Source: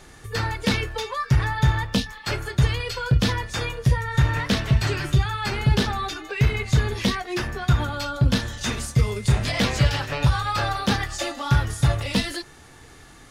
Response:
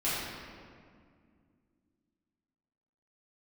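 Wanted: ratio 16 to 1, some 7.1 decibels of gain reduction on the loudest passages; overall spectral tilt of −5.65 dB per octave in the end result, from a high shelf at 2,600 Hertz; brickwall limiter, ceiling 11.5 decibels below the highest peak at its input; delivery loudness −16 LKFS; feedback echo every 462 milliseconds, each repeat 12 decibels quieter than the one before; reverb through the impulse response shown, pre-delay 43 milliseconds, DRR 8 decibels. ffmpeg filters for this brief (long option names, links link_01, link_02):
-filter_complex "[0:a]highshelf=frequency=2600:gain=-9,acompressor=threshold=-20dB:ratio=16,alimiter=limit=-23dB:level=0:latency=1,aecho=1:1:462|924|1386:0.251|0.0628|0.0157,asplit=2[link_01][link_02];[1:a]atrim=start_sample=2205,adelay=43[link_03];[link_02][link_03]afir=irnorm=-1:irlink=0,volume=-17.5dB[link_04];[link_01][link_04]amix=inputs=2:normalize=0,volume=16dB"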